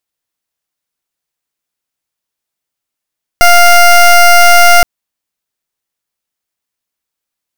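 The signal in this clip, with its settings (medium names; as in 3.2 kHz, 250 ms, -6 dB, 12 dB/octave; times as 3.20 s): pulse 700 Hz, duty 18% -3.5 dBFS 1.42 s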